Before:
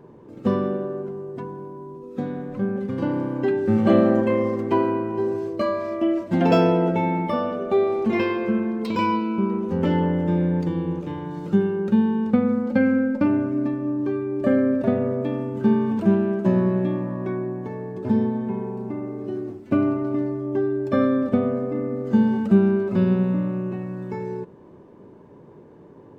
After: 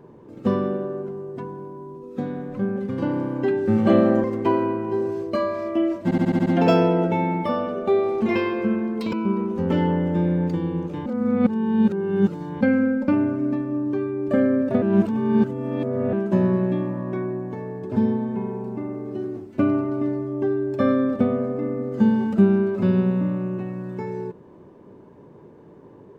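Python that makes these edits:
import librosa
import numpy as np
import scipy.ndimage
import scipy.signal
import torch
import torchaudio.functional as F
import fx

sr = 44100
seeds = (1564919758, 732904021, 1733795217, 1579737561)

y = fx.edit(x, sr, fx.cut(start_s=4.24, length_s=0.26),
    fx.stutter(start_s=6.3, slice_s=0.07, count=7),
    fx.cut(start_s=8.97, length_s=0.29),
    fx.reverse_span(start_s=11.19, length_s=1.55),
    fx.reverse_span(start_s=14.95, length_s=1.31), tone=tone)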